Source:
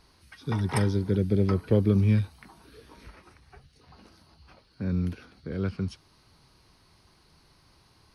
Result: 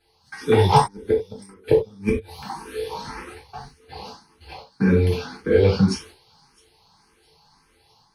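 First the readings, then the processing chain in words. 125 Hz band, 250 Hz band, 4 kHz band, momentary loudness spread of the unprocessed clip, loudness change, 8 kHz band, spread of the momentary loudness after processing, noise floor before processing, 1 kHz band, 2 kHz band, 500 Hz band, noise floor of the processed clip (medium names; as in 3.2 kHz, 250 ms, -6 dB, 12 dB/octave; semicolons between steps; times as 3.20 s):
+2.0 dB, +4.0 dB, +12.5 dB, 14 LU, +5.5 dB, no reading, 22 LU, -62 dBFS, +17.5 dB, +10.0 dB, +11.5 dB, -61 dBFS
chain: gate -54 dBFS, range -15 dB; bass shelf 270 Hz -9.5 dB; band-stop 640 Hz, Q 13; inverted gate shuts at -20 dBFS, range -38 dB; in parallel at -11.5 dB: hard clipper -37 dBFS, distortion -6 dB; on the sum: small resonant body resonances 450/820 Hz, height 14 dB, ringing for 75 ms; on a send: feedback echo behind a high-pass 660 ms, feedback 45%, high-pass 4.4 kHz, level -20.5 dB; on the sum: gated-style reverb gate 120 ms falling, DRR -4.5 dB; level rider gain up to 5 dB; barber-pole phaser +1.8 Hz; trim +7 dB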